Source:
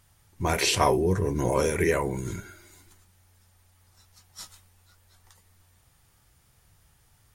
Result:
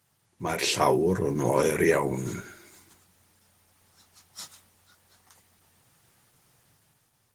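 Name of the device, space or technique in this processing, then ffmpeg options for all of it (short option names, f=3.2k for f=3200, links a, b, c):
video call: -af "highpass=f=120:w=0.5412,highpass=f=120:w=1.3066,dynaudnorm=f=120:g=11:m=7dB,volume=-4dB" -ar 48000 -c:a libopus -b:a 16k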